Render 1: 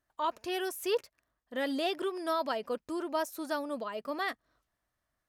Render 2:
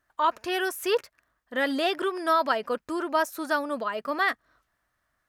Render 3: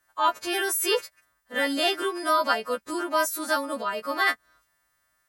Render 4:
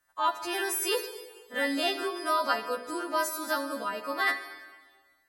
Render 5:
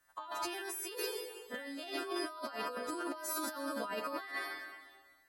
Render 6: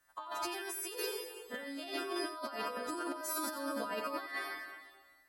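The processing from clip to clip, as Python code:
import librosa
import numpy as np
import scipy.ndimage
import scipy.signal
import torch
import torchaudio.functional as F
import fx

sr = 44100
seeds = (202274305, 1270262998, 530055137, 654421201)

y1 = fx.peak_eq(x, sr, hz=1500.0, db=7.5, octaves=1.2)
y1 = y1 * 10.0 ** (4.5 / 20.0)
y2 = fx.freq_snap(y1, sr, grid_st=2)
y3 = fx.rev_plate(y2, sr, seeds[0], rt60_s=1.5, hf_ratio=1.0, predelay_ms=0, drr_db=8.0)
y3 = y3 * 10.0 ** (-4.5 / 20.0)
y4 = fx.over_compress(y3, sr, threshold_db=-37.0, ratio=-1.0)
y4 = y4 * 10.0 ** (-4.0 / 20.0)
y5 = y4 + 10.0 ** (-12.0 / 20.0) * np.pad(y4, (int(90 * sr / 1000.0), 0))[:len(y4)]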